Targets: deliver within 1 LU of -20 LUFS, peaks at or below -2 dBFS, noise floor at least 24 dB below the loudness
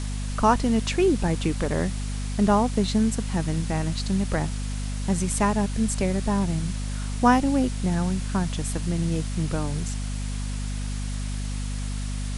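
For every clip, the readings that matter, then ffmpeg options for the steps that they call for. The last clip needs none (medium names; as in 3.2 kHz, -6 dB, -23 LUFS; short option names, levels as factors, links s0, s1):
hum 50 Hz; highest harmonic 250 Hz; hum level -27 dBFS; noise floor -29 dBFS; noise floor target -50 dBFS; loudness -25.5 LUFS; peak level -5.5 dBFS; loudness target -20.0 LUFS
-> -af "bandreject=f=50:t=h:w=4,bandreject=f=100:t=h:w=4,bandreject=f=150:t=h:w=4,bandreject=f=200:t=h:w=4,bandreject=f=250:t=h:w=4"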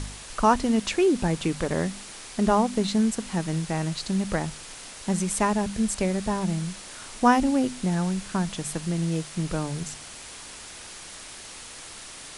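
hum not found; noise floor -42 dBFS; noise floor target -50 dBFS
-> -af "afftdn=nr=8:nf=-42"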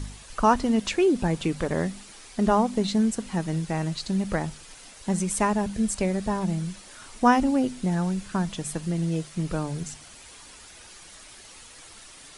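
noise floor -48 dBFS; noise floor target -50 dBFS
-> -af "afftdn=nr=6:nf=-48"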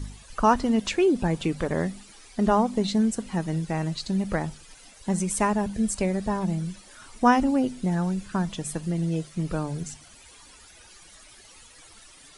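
noise floor -51 dBFS; loudness -26.0 LUFS; peak level -7.0 dBFS; loudness target -20.0 LUFS
-> -af "volume=2,alimiter=limit=0.794:level=0:latency=1"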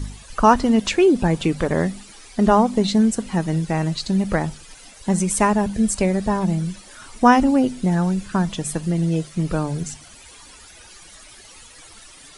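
loudness -20.0 LUFS; peak level -2.0 dBFS; noise floor -45 dBFS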